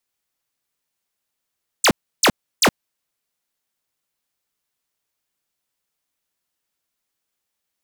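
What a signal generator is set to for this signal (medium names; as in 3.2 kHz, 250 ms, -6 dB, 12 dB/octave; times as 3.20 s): burst of laser zaps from 9.6 kHz, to 140 Hz, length 0.07 s square, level -13 dB, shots 3, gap 0.32 s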